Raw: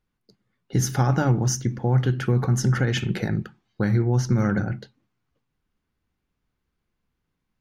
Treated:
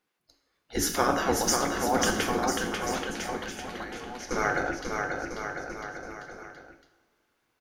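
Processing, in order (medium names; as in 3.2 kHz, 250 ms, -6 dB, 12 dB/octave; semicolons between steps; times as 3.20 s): spectral gate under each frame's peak -15 dB weak; in parallel at -0.5 dB: gain riding; on the sum: two-slope reverb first 0.74 s, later 2.6 s, from -18 dB, DRR 5.5 dB; 2.45–4.31 s: compression 10:1, threshold -38 dBFS, peak gain reduction 16.5 dB; bouncing-ball echo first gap 540 ms, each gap 0.85×, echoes 5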